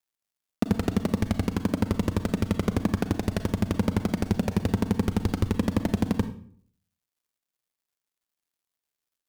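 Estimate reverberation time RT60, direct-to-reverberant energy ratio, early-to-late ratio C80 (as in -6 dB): 0.55 s, 10.0 dB, 15.0 dB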